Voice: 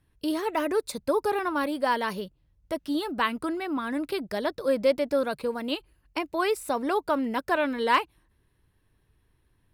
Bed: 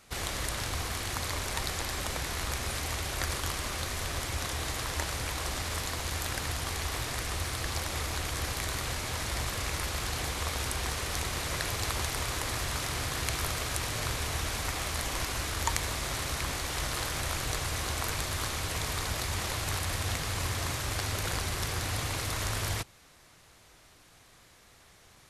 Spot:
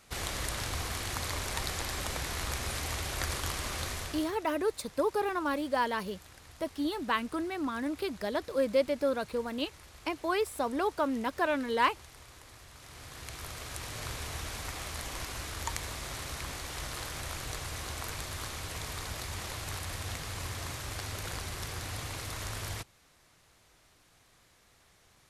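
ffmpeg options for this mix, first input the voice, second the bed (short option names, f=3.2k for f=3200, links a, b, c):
-filter_complex "[0:a]adelay=3900,volume=-4dB[a];[1:a]volume=12.5dB,afade=t=out:st=3.88:d=0.48:silence=0.11885,afade=t=in:st=12.75:d=1.37:silence=0.199526[b];[a][b]amix=inputs=2:normalize=0"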